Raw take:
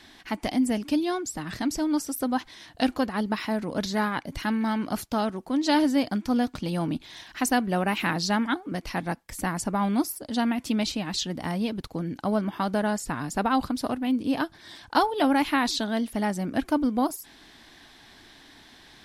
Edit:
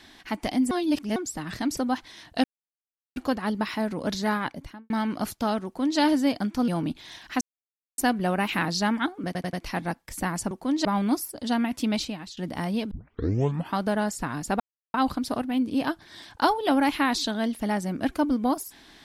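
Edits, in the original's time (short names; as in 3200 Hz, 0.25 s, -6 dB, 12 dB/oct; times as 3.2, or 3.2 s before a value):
0.71–1.16 reverse
1.77–2.2 cut
2.87 insert silence 0.72 s
4.14–4.61 studio fade out
5.36–5.7 copy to 9.72
6.39–6.73 cut
7.46 insert silence 0.57 s
8.74 stutter 0.09 s, 4 plays
10.85–11.24 fade out, to -23.5 dB
11.78 tape start 0.82 s
13.47 insert silence 0.34 s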